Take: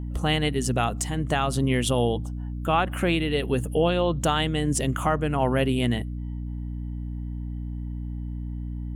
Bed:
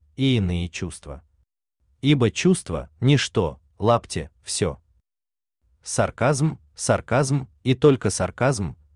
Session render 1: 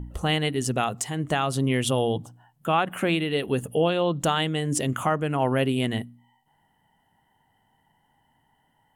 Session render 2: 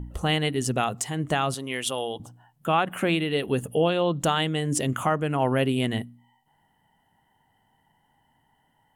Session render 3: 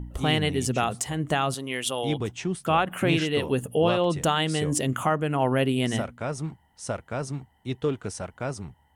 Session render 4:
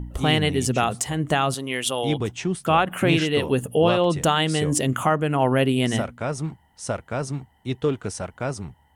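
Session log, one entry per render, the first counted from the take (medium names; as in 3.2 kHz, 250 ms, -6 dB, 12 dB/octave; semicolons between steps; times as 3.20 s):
de-hum 60 Hz, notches 5
1.54–2.20 s: high-pass 850 Hz 6 dB/octave
add bed -11 dB
trim +3.5 dB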